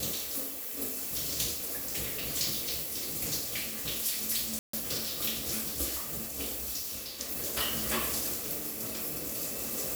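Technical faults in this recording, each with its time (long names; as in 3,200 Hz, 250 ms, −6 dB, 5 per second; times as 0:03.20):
0:04.59–0:04.73: drop-out 144 ms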